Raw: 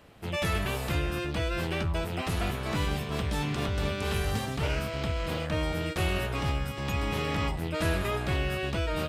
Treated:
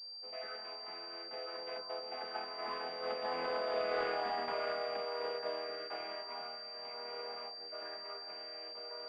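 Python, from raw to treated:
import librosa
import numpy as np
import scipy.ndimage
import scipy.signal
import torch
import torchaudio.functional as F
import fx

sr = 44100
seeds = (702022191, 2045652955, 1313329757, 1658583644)

p1 = fx.chord_vocoder(x, sr, chord='major triad', root=52)
p2 = fx.doppler_pass(p1, sr, speed_mps=10, closest_m=3.0, pass_at_s=3.98)
p3 = scipy.signal.sosfilt(scipy.signal.butter(4, 520.0, 'highpass', fs=sr, output='sos'), p2)
p4 = fx.over_compress(p3, sr, threshold_db=-50.0, ratio=-1.0)
p5 = p3 + (p4 * 10.0 ** (2.0 / 20.0))
p6 = fx.pwm(p5, sr, carrier_hz=4700.0)
y = p6 * 10.0 ** (5.5 / 20.0)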